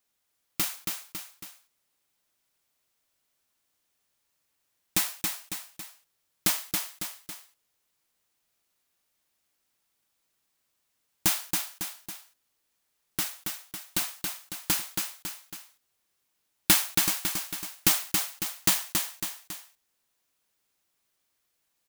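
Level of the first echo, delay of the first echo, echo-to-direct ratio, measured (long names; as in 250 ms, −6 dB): −4.5 dB, 276 ms, −3.5 dB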